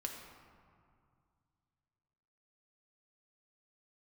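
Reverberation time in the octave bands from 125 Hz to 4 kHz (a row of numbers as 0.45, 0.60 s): 3.2, 2.6, 2.2, 2.3, 1.7, 1.1 s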